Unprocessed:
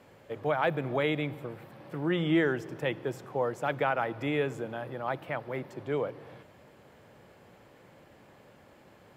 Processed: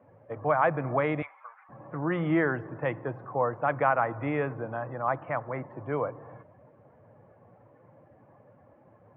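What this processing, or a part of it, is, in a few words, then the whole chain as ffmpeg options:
bass cabinet: -filter_complex "[0:a]asettb=1/sr,asplit=3[link_01][link_02][link_03];[link_01]atrim=end=1.224[link_04];[link_02]atrim=start=1.22:end=1.69,asetpts=PTS-STARTPTS,afade=type=in:duration=0.004:curve=qsin,afade=type=out:start_time=0.466:duration=0.004:curve=qsin,highpass=frequency=930:width=0.5412,highpass=frequency=930:width=1.3066[link_05];[link_03]atrim=start=1.686[link_06];[link_04][link_05]acrossfade=duration=0.004:curve1=hsin:curve2=qsin[link_07];[link_07][link_06]acrossfade=duration=0.004:curve1=qsin:curve2=hsin,afftdn=noise_reduction=13:noise_floor=-52,highpass=70,equalizer=frequency=110:width_type=q:width=4:gain=5,equalizer=frequency=200:width_type=q:width=4:gain=-4,equalizer=frequency=390:width_type=q:width=4:gain=-6,equalizer=frequency=690:width_type=q:width=4:gain=3,equalizer=frequency=1100:width_type=q:width=4:gain=8,lowpass=frequency=2100:width=0.5412,lowpass=frequency=2100:width=1.3066,volume=2dB"

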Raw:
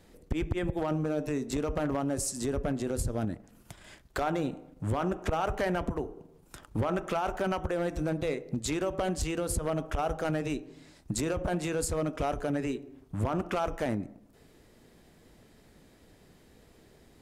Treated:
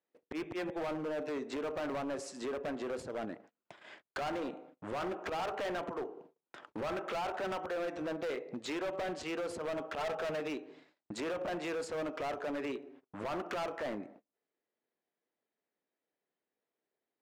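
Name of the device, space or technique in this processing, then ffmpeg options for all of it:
walkie-talkie: -filter_complex "[0:a]asettb=1/sr,asplit=3[link_01][link_02][link_03];[link_01]atrim=end=10.004[link_04];[link_02]atrim=start=10:end=10.4,asetpts=PTS-STARTPTS,afade=type=in:duration=0.004:curve=qsin,afade=type=out:start_time=0.396:duration=0.004:curve=qsin,aecho=1:1:4.6:0.77,atrim=end_sample=17640[link_05];[link_03]atrim=start=10.396[link_06];[link_04][link_05]acrossfade=duration=0.004:curve1=hsin:curve2=qsin[link_07];[link_07][link_06]acrossfade=duration=0.004:curve1=qsin:curve2=hsin,highpass=410,lowpass=3000,asoftclip=type=hard:threshold=-35dB,agate=range=-29dB:threshold=-57dB:ratio=16:detection=peak,volume=1.5dB"

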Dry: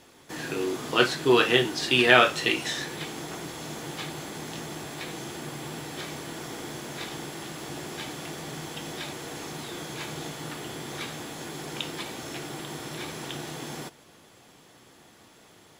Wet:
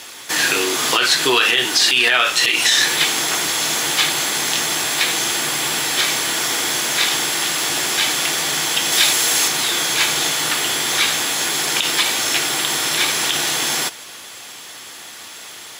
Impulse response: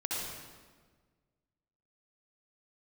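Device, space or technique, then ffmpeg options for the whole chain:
mastering chain: -filter_complex "[0:a]highpass=49,equalizer=frequency=150:width_type=o:width=0.79:gain=-3.5,acompressor=threshold=-28dB:ratio=2.5,tiltshelf=frequency=850:gain=-9.5,alimiter=level_in=17dB:limit=-1dB:release=50:level=0:latency=1,asettb=1/sr,asplit=3[link_01][link_02][link_03];[link_01]atrim=end=8.924[link_04];[link_02]atrim=start=8.92:end=9.48,asetpts=PTS-STARTPTS,afade=type=in:duration=0.004:curve=qsin,afade=type=out:start_time=0.556:duration=0.004:curve=qsin,highshelf=frequency=4400:gain=6[link_05];[link_03]atrim=start=9.476[link_06];[link_04][link_05]acrossfade=duration=0.004:curve1=hsin:curve2=qsin[link_07];[link_07][link_06]acrossfade=duration=0.004:curve1=qsin:curve2=hsin,volume=-3dB"

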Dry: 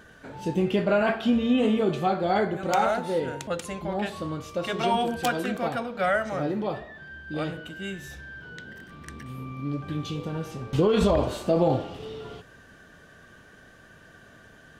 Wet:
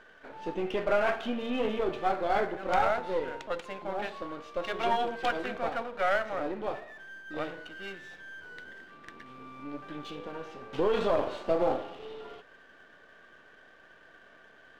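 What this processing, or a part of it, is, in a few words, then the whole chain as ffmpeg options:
crystal radio: -af "highpass=380,lowpass=3100,aeval=exprs='if(lt(val(0),0),0.447*val(0),val(0))':channel_layout=same"

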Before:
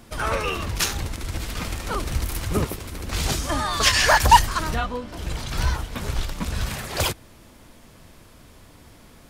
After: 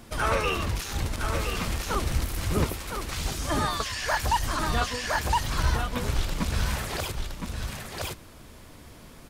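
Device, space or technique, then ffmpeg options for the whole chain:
de-esser from a sidechain: -filter_complex "[0:a]asettb=1/sr,asplit=3[link_01][link_02][link_03];[link_01]atrim=end=2.744[link_04];[link_02]atrim=start=2.74:end=3.19,asetpts=PTS-STARTPTS,afade=type=in:duration=0.004:curve=qsin,afade=type=out:start_time=0.446:duration=0.004:curve=qsin,highpass=750[link_05];[link_03]atrim=start=3.186[link_06];[link_04][link_05]acrossfade=duration=0.004:curve1=hsin:curve2=qsin[link_07];[link_07][link_06]acrossfade=duration=0.004:curve1=qsin:curve2=hsin,aecho=1:1:1014:0.473,asplit=2[link_08][link_09];[link_09]highpass=frequency=4000:width=0.5412,highpass=frequency=4000:width=1.3066,apad=whole_len=454800[link_10];[link_08][link_10]sidechaincompress=threshold=-34dB:ratio=8:attack=1.2:release=34"

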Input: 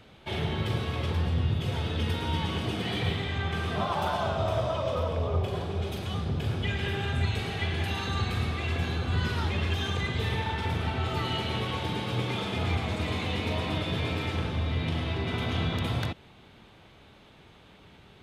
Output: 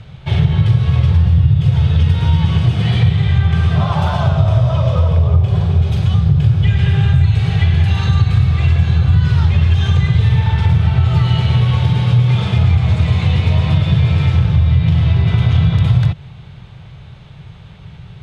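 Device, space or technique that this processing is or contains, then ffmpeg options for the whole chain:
jukebox: -af "lowpass=8000,lowshelf=frequency=190:width_type=q:width=3:gain=10.5,acompressor=threshold=-17dB:ratio=4,volume=8.5dB"

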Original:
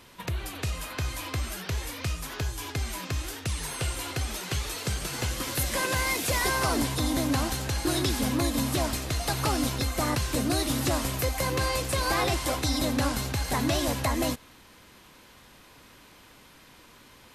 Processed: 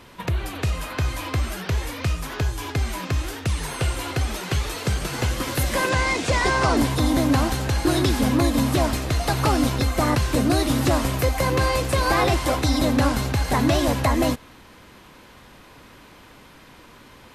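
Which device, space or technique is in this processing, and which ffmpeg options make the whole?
behind a face mask: -filter_complex "[0:a]highshelf=frequency=3100:gain=-8,asettb=1/sr,asplit=3[link_01][link_02][link_03];[link_01]atrim=end=5.894[link_04];[link_02]atrim=start=5.89:end=6.77,asetpts=PTS-STARTPTS,afade=type=in:duration=0.004:curve=qsin,afade=type=out:start_time=0.876:duration=0.004:curve=qsin,lowpass=frequency=8300:width=0.5412,lowpass=frequency=8300:width=1.3066[link_05];[link_03]atrim=start=6.766[link_06];[link_04][link_05]acrossfade=duration=0.004:curve1=hsin:curve2=qsin[link_07];[link_07][link_06]acrossfade=duration=0.004:curve1=qsin:curve2=hsin,volume=7.5dB"

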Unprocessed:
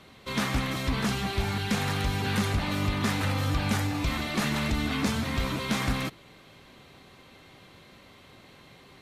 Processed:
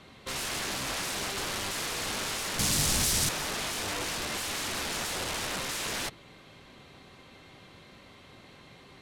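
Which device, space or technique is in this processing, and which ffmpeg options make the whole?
overflowing digital effects unit: -filter_complex "[0:a]aeval=exprs='(mod(25.1*val(0)+1,2)-1)/25.1':channel_layout=same,lowpass=11000,asettb=1/sr,asplit=3[link_01][link_02][link_03];[link_01]atrim=end=2.594[link_04];[link_02]atrim=start=2.59:end=3.29,asetpts=PTS-STARTPTS,afade=type=in:duration=0.004:curve=qsin,afade=type=out:start_time=0.696:duration=0.004:curve=qsin,bass=frequency=250:gain=13,treble=frequency=4000:gain=11[link_05];[link_03]atrim=start=3.286[link_06];[link_04][link_05]acrossfade=duration=0.004:curve1=hsin:curve2=qsin[link_07];[link_07][link_06]acrossfade=duration=0.004:curve1=qsin:curve2=hsin"

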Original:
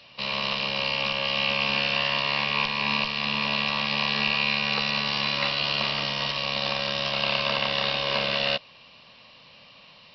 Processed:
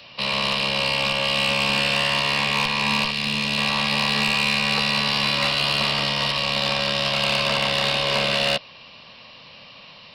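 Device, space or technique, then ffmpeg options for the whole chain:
one-band saturation: -filter_complex "[0:a]acrossover=split=220|5000[link_01][link_02][link_03];[link_02]asoftclip=type=tanh:threshold=-23dB[link_04];[link_01][link_04][link_03]amix=inputs=3:normalize=0,asettb=1/sr,asplit=3[link_05][link_06][link_07];[link_05]atrim=end=3.114[link_08];[link_06]atrim=start=3.11:end=3.58,asetpts=PTS-STARTPTS,afade=type=in:duration=0.004:curve=qsin,afade=type=out:start_time=0.466:duration=0.004:curve=qsin,equalizer=frequency=950:width=0.81:gain=-7.5[link_09];[link_07]atrim=start=3.576[link_10];[link_08][link_09]acrossfade=duration=0.004:curve1=hsin:curve2=qsin[link_11];[link_11][link_10]acrossfade=duration=0.004:curve1=qsin:curve2=hsin,volume=6.5dB"

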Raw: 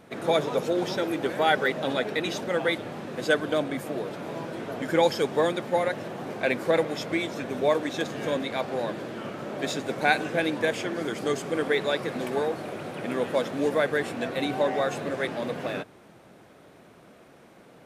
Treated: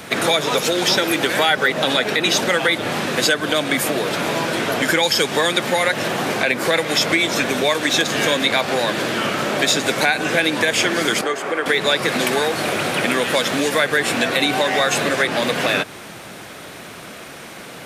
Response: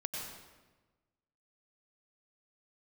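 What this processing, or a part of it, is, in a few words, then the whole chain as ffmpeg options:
mastering chain: -filter_complex "[0:a]equalizer=frequency=550:width_type=o:width=2.7:gain=-3,acrossover=split=170|1400[link_01][link_02][link_03];[link_01]acompressor=threshold=-48dB:ratio=4[link_04];[link_02]acompressor=threshold=-30dB:ratio=4[link_05];[link_03]acompressor=threshold=-36dB:ratio=4[link_06];[link_04][link_05][link_06]amix=inputs=3:normalize=0,acompressor=threshold=-36dB:ratio=2,tiltshelf=frequency=1100:gain=-5.5,alimiter=level_in=23.5dB:limit=-1dB:release=50:level=0:latency=1,asettb=1/sr,asplit=3[link_07][link_08][link_09];[link_07]atrim=end=11.214[link_10];[link_08]atrim=start=11.21:end=11.66,asetpts=PTS-STARTPTS,afade=type=in:duration=0.004:curve=qsin,afade=type=out:start_time=0.446:duration=0.004:curve=qsin,acrossover=split=340 2100:gain=0.178 1 0.158[link_11][link_12][link_13];[link_11][link_12][link_13]amix=inputs=3:normalize=0[link_14];[link_09]atrim=start=11.656[link_15];[link_10][link_14]acrossfade=duration=0.004:curve1=hsin:curve2=qsin[link_16];[link_16][link_15]acrossfade=duration=0.004:curve1=qsin:curve2=hsin,volume=-3.5dB"

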